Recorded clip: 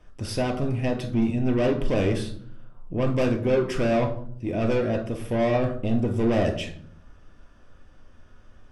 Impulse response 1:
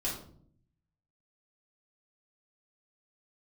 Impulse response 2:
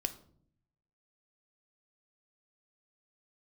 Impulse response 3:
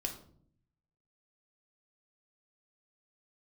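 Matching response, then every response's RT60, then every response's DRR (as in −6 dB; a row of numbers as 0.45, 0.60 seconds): 3; 0.60, 0.60, 0.60 seconds; −6.0, 9.0, 3.0 decibels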